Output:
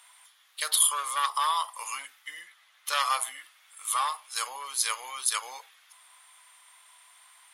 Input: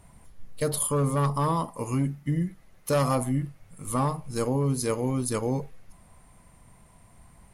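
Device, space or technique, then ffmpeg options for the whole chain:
headphones lying on a table: -filter_complex "[0:a]highpass=frequency=1100:width=0.5412,highpass=frequency=1100:width=1.3066,equalizer=frequency=3400:width_type=o:width=0.41:gain=11,asettb=1/sr,asplit=3[link_01][link_02][link_03];[link_01]atrim=end=2.414[link_04];[link_02]atrim=start=2.41:end=3.15,asetpts=PTS-STARTPTS,afade=type=in:duration=0.004:curve=qsin,afade=type=out:start_time=0.736:duration=0.004:curve=qsin,highshelf=frequency=6400:gain=-7[link_05];[link_03]atrim=start=3.146[link_06];[link_04][link_05]acrossfade=duration=0.004:curve1=hsin:curve2=qsin[link_07];[link_07][link_06]acrossfade=duration=0.004:curve1=qsin:curve2=hsin,volume=6dB"

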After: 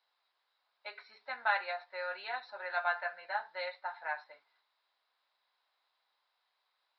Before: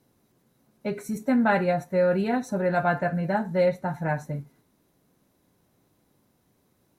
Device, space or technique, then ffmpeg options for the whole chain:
musical greeting card: -af "aresample=11025,aresample=44100,highpass=frequency=860:width=0.5412,highpass=frequency=860:width=1.3066,equalizer=frequency=3800:width_type=o:width=0.38:gain=5,volume=-4dB"

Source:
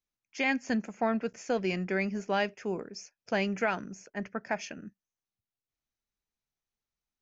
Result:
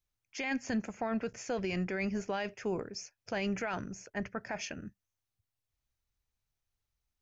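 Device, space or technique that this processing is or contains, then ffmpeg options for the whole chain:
car stereo with a boomy subwoofer: -af "lowshelf=frequency=140:width_type=q:width=1.5:gain=9,alimiter=level_in=3dB:limit=-24dB:level=0:latency=1:release=23,volume=-3dB,volume=1.5dB"

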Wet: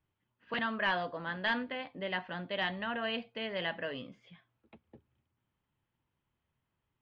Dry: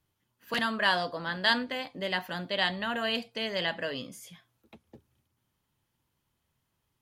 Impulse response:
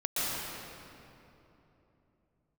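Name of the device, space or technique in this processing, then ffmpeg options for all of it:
synthesiser wavefolder: -af "aeval=exprs='0.126*(abs(mod(val(0)/0.126+3,4)-2)-1)':channel_layout=same,lowpass=frequency=3100:width=0.5412,lowpass=frequency=3100:width=1.3066,volume=-4dB"

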